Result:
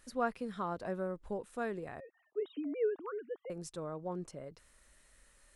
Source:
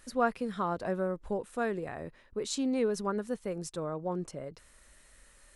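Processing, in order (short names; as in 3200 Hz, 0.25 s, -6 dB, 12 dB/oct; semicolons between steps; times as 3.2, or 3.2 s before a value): 2–3.5 sine-wave speech; gain -5.5 dB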